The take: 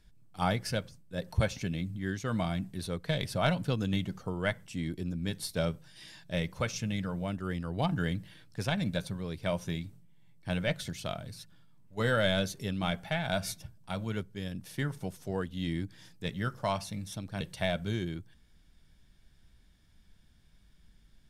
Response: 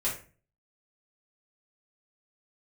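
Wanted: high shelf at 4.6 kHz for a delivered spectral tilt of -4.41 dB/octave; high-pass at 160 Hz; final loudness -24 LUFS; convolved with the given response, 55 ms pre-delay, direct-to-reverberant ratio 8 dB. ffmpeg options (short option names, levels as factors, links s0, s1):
-filter_complex "[0:a]highpass=160,highshelf=f=4600:g=-4.5,asplit=2[s0][s1];[1:a]atrim=start_sample=2205,adelay=55[s2];[s1][s2]afir=irnorm=-1:irlink=0,volume=0.188[s3];[s0][s3]amix=inputs=2:normalize=0,volume=3.55"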